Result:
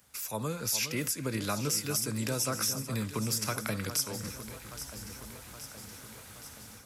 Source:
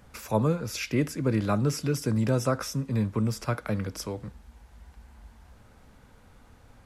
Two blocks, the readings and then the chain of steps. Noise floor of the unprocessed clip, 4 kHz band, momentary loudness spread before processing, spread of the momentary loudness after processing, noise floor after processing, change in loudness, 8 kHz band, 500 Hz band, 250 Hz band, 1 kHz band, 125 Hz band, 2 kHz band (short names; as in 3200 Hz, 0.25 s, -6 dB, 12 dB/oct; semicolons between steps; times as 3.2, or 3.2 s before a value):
-56 dBFS, +5.0 dB, 8 LU, 16 LU, -49 dBFS, -4.0 dB, +8.5 dB, -7.5 dB, -8.0 dB, -4.5 dB, -8.5 dB, 0.0 dB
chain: HPF 65 Hz; AGC gain up to 15 dB; pre-emphasis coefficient 0.9; compressor 3:1, threshold -35 dBFS, peak gain reduction 11 dB; echo with dull and thin repeats by turns 0.411 s, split 1700 Hz, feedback 79%, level -10 dB; gain +4.5 dB